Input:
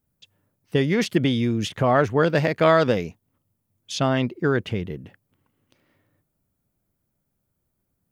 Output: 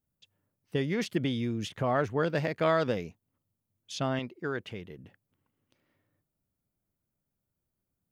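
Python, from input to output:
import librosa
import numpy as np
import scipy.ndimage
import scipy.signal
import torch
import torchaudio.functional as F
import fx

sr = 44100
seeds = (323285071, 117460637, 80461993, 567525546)

y = fx.low_shelf(x, sr, hz=340.0, db=-8.0, at=(4.19, 4.99))
y = y * librosa.db_to_amplitude(-9.0)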